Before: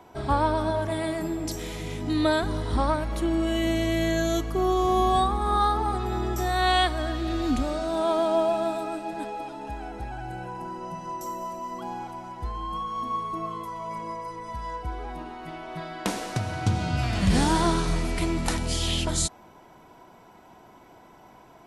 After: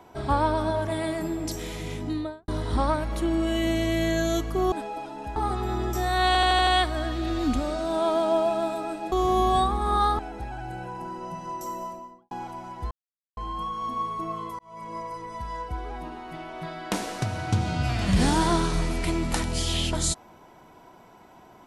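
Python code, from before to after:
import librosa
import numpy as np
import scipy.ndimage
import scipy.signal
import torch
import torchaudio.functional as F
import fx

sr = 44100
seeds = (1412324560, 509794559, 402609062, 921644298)

y = fx.studio_fade_out(x, sr, start_s=1.92, length_s=0.56)
y = fx.studio_fade_out(y, sr, start_s=11.37, length_s=0.54)
y = fx.edit(y, sr, fx.swap(start_s=4.72, length_s=1.07, other_s=9.15, other_length_s=0.64),
    fx.stutter(start_s=6.7, slice_s=0.08, count=6),
    fx.insert_silence(at_s=12.51, length_s=0.46),
    fx.fade_in_span(start_s=13.73, length_s=0.4), tone=tone)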